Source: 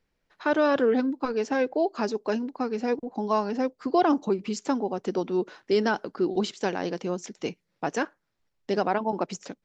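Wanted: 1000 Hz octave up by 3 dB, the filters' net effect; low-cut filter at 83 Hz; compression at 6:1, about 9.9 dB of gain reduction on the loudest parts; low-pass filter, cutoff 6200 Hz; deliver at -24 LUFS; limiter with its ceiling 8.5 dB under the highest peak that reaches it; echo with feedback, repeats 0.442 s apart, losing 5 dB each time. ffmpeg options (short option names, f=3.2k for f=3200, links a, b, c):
-af "highpass=83,lowpass=6.2k,equalizer=f=1k:t=o:g=4,acompressor=threshold=-27dB:ratio=6,alimiter=limit=-22dB:level=0:latency=1,aecho=1:1:442|884|1326|1768|2210|2652|3094:0.562|0.315|0.176|0.0988|0.0553|0.031|0.0173,volume=9dB"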